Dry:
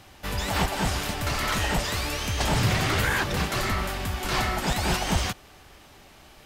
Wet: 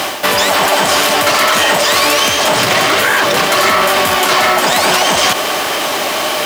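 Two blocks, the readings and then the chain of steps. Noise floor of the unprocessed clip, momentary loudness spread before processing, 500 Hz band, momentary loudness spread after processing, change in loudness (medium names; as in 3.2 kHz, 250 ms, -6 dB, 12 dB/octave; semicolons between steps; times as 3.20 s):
-51 dBFS, 6 LU, +18.5 dB, 5 LU, +15.0 dB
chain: high-pass 340 Hz 12 dB/octave; reverse; compression 5:1, threshold -44 dBFS, peak gain reduction 19 dB; reverse; small resonant body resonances 620/1100/3100 Hz, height 7 dB; companded quantiser 6-bit; loudness maximiser +35.5 dB; transformer saturation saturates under 900 Hz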